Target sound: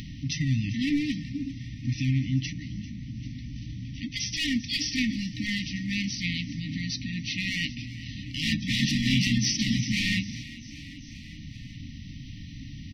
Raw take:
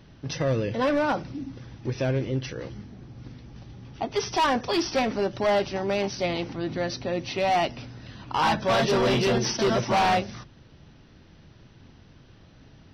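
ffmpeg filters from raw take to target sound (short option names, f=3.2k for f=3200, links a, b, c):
-filter_complex "[0:a]asplit=5[a][b][c][d][e];[b]adelay=394,afreqshift=43,volume=-18dB[f];[c]adelay=788,afreqshift=86,volume=-23.7dB[g];[d]adelay=1182,afreqshift=129,volume=-29.4dB[h];[e]adelay=1576,afreqshift=172,volume=-35dB[i];[a][f][g][h][i]amix=inputs=5:normalize=0,acompressor=mode=upward:threshold=-32dB:ratio=2.5,afftfilt=real='re*(1-between(b*sr/4096,310,1800))':imag='im*(1-between(b*sr/4096,310,1800))':win_size=4096:overlap=0.75,volume=2.5dB"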